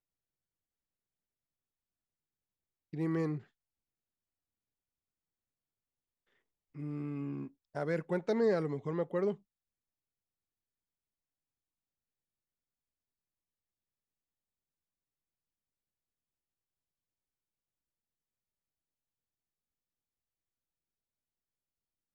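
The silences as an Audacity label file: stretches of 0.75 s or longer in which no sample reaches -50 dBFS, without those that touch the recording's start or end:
3.410000	6.750000	silence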